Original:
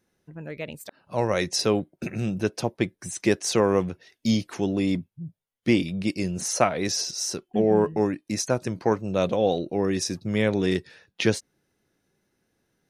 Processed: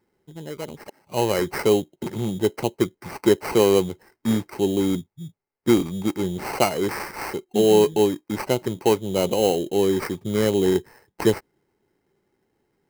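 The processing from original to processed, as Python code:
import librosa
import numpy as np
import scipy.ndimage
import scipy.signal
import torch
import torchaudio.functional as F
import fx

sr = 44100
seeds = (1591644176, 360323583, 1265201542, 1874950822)

y = fx.self_delay(x, sr, depth_ms=0.077)
y = fx.peak_eq(y, sr, hz=3600.0, db=-4.5, octaves=2.8)
y = fx.sample_hold(y, sr, seeds[0], rate_hz=3500.0, jitter_pct=0)
y = fx.high_shelf(y, sr, hz=8200.0, db=4.0)
y = fx.small_body(y, sr, hz=(390.0, 850.0, 2100.0), ring_ms=25, db=8)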